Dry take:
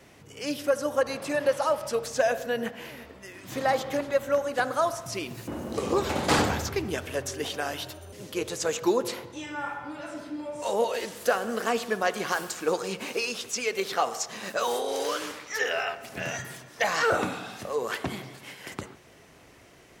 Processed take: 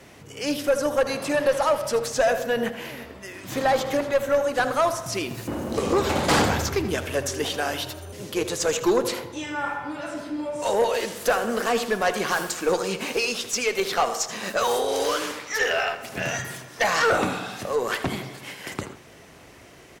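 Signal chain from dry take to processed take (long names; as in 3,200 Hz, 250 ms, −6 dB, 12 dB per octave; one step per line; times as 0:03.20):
tube saturation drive 19 dB, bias 0.25
on a send: single-tap delay 80 ms −14 dB
on the sum: level +6 dB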